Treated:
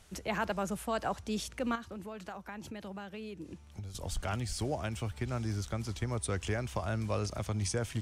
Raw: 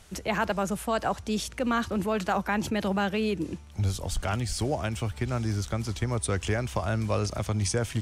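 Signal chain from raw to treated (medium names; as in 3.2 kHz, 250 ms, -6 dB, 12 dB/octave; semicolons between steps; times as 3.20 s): 1.75–3.95 s: compression 10:1, threshold -34 dBFS, peak gain reduction 12.5 dB; trim -6 dB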